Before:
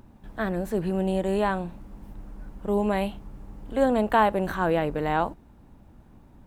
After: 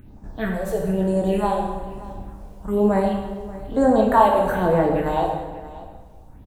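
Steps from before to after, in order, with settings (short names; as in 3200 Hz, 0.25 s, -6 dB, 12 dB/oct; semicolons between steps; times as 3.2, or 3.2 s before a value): phaser stages 4, 1.1 Hz, lowest notch 210–3200 Hz; echo 0.584 s -18 dB; plate-style reverb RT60 1.3 s, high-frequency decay 0.8×, DRR 0 dB; gain +4 dB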